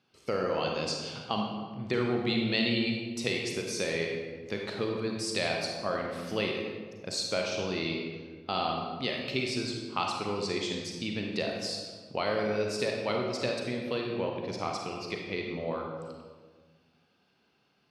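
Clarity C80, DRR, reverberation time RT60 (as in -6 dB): 3.5 dB, 0.5 dB, 1.5 s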